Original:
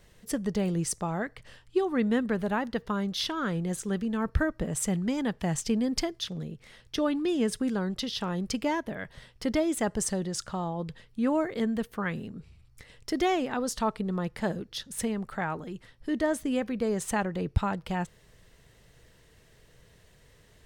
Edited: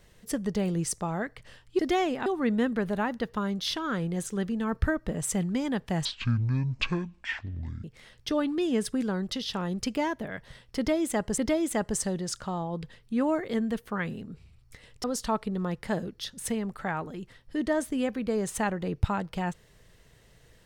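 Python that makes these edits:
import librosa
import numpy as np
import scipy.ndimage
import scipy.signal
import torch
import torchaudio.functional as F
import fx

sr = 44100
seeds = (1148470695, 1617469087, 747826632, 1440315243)

y = fx.edit(x, sr, fx.speed_span(start_s=5.58, length_s=0.93, speed=0.52),
    fx.repeat(start_s=9.44, length_s=0.61, count=2),
    fx.move(start_s=13.1, length_s=0.47, to_s=1.79), tone=tone)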